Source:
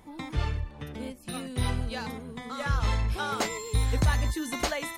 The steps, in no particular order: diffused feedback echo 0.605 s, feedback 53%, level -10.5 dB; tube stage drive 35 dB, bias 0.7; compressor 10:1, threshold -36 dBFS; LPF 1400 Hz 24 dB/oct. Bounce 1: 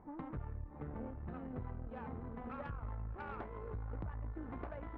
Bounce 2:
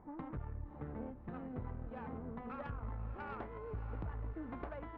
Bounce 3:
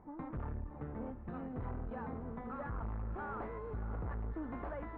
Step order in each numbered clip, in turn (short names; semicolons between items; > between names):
diffused feedback echo > compressor > LPF > tube stage; compressor > LPF > tube stage > diffused feedback echo; tube stage > diffused feedback echo > compressor > LPF